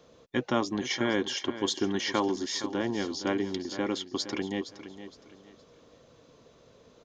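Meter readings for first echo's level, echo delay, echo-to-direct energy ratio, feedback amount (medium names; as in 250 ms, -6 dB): -12.5 dB, 465 ms, -12.0 dB, 30%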